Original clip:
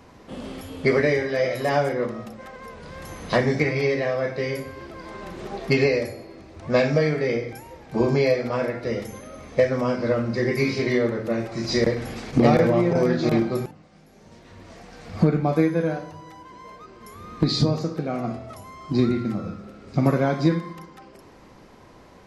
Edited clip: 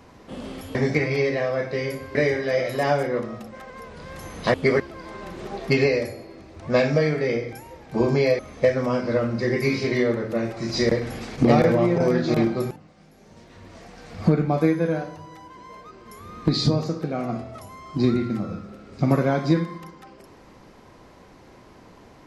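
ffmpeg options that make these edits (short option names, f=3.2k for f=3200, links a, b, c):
-filter_complex "[0:a]asplit=6[a][b][c][d][e][f];[a]atrim=end=0.752[g];[b]atrim=start=3.398:end=4.802[h];[c]atrim=start=1.008:end=3.402[i];[d]atrim=start=0.748:end=1.012[j];[e]atrim=start=4.798:end=8.392[k];[f]atrim=start=9.338[l];[g][h]acrossfade=d=0.004:c1=hsin:c2=hsin[m];[m][i]acrossfade=d=0.004:c1=hsin:c2=hsin[n];[n][j]acrossfade=d=0.004:c1=hsin:c2=hsin[o];[o][k]acrossfade=d=0.004:c1=hsin:c2=hsin[p];[p][l]acrossfade=d=0.004:c1=hsin:c2=hsin"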